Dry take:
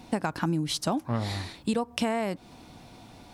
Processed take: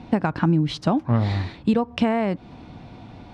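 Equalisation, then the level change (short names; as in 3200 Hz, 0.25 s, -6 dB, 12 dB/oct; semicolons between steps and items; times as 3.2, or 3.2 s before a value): LPF 3100 Hz 12 dB/oct; bell 100 Hz +6 dB 3 oct; +4.5 dB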